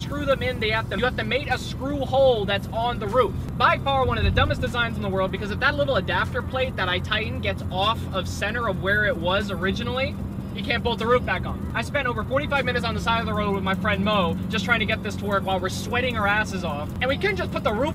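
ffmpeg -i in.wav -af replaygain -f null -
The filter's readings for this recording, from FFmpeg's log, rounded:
track_gain = +4.0 dB
track_peak = 0.367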